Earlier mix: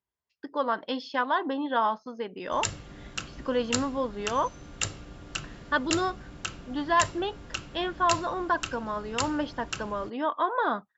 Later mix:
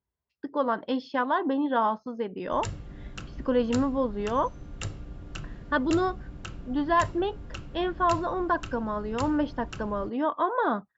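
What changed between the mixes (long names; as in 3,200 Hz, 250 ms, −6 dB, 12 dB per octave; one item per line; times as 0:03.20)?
background −4.5 dB
master: add spectral tilt −2.5 dB per octave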